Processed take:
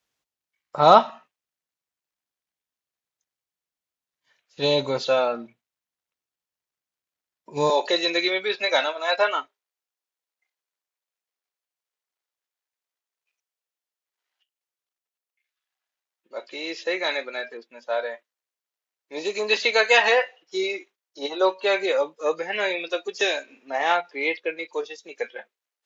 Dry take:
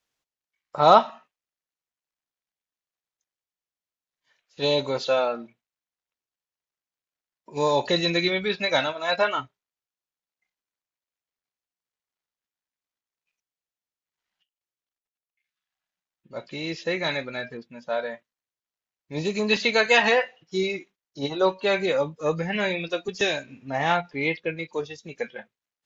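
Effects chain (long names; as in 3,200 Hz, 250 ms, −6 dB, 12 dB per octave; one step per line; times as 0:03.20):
high-pass filter 42 Hz 24 dB per octave, from 0:07.70 350 Hz
level +1.5 dB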